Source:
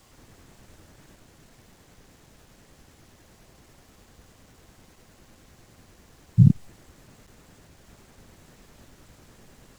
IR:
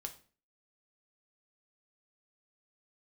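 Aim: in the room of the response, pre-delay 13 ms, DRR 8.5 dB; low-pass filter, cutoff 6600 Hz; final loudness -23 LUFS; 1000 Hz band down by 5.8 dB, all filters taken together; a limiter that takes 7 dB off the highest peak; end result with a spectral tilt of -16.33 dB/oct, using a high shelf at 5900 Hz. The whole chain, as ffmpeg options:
-filter_complex "[0:a]lowpass=6.6k,equalizer=f=1k:t=o:g=-8,highshelf=f=5.9k:g=5,alimiter=limit=-11dB:level=0:latency=1,asplit=2[a][b];[1:a]atrim=start_sample=2205,adelay=13[c];[b][c]afir=irnorm=-1:irlink=0,volume=-5.5dB[d];[a][d]amix=inputs=2:normalize=0,volume=2dB"

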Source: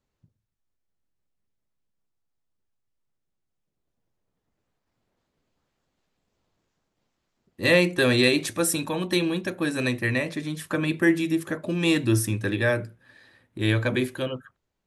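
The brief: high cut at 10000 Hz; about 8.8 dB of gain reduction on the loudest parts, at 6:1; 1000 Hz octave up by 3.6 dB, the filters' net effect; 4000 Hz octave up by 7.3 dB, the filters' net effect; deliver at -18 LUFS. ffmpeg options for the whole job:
-af "lowpass=10k,equalizer=f=1k:t=o:g=4,equalizer=f=4k:t=o:g=8,acompressor=threshold=-22dB:ratio=6,volume=9dB"

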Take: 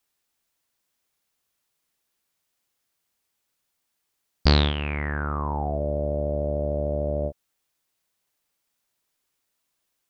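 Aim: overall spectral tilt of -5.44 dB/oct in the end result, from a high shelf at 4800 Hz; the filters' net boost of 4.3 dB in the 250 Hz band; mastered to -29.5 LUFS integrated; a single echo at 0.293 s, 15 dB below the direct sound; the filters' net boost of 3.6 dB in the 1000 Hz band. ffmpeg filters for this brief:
-af "equalizer=f=250:t=o:g=5.5,equalizer=f=1k:t=o:g=4.5,highshelf=f=4.8k:g=-4,aecho=1:1:293:0.178,volume=-5dB"

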